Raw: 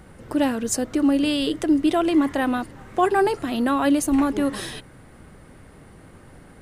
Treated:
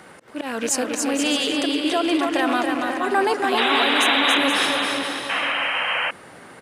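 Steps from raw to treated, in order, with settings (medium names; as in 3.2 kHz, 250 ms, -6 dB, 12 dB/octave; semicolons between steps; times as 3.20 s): rattle on loud lows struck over -27 dBFS, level -27 dBFS; painted sound noise, 3.57–4.38 s, 450–4000 Hz -21 dBFS; in parallel at -0.5 dB: gain riding within 4 dB; on the sum: echo from a far wall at 92 m, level -11 dB; slow attack 197 ms; peak limiter -10 dBFS, peak gain reduction 8.5 dB; on a send: bouncing-ball echo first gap 280 ms, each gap 0.7×, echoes 5; on the sum: painted sound noise, 5.29–6.11 s, 480–3200 Hz -24 dBFS; frequency weighting A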